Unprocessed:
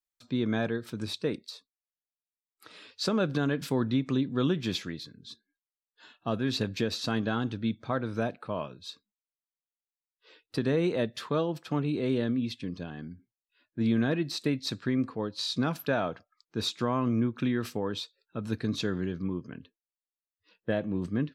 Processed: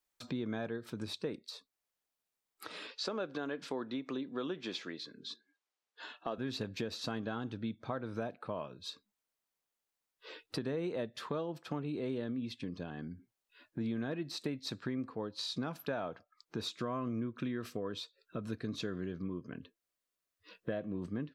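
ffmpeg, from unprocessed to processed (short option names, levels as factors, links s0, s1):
-filter_complex "[0:a]asettb=1/sr,asplit=3[s0][s1][s2];[s0]atrim=end=2.874[s3];[s1]atrim=start=2.87:end=6.38,asetpts=PTS-STARTPTS,afade=t=in:d=0.004:c=qsin,afade=t=out:st=3.506:d=0.004:c=qsin,highpass=310,lowpass=6500[s4];[s2]atrim=start=6.376[s5];[s3][s4]acrossfade=d=0.004:c1=hsin:c2=qsin[s6];[s6][s5]acrossfade=d=0.004:c1=qsin:c2=hsin,asettb=1/sr,asplit=3[s7][s8][s9];[s7]atrim=end=16.684[s10];[s8]atrim=start=16.68:end=20.98,asetpts=PTS-STARTPTS,afade=t=in:d=0.004:c=qsin,afade=t=out:st=4.296:d=0.004:c=qsin,asuperstop=centerf=850:order=8:qfactor=5.1[s11];[s9]atrim=start=20.976[s12];[s10][s11]acrossfade=d=0.004:c1=hsin:c2=qsin[s13];[s13][s12]acrossfade=d=0.004:c1=qsin:c2=hsin,equalizer=f=670:w=0.46:g=4.5,acompressor=threshold=0.00316:ratio=2.5,volume=2"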